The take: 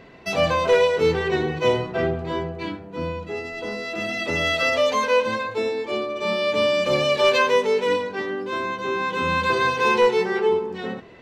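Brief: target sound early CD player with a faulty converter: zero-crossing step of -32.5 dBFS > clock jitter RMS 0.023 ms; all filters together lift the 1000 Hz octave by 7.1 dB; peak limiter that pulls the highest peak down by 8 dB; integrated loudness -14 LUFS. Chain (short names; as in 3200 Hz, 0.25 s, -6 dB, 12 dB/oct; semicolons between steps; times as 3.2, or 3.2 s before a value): bell 1000 Hz +7.5 dB; limiter -12.5 dBFS; zero-crossing step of -32.5 dBFS; clock jitter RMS 0.023 ms; gain +6.5 dB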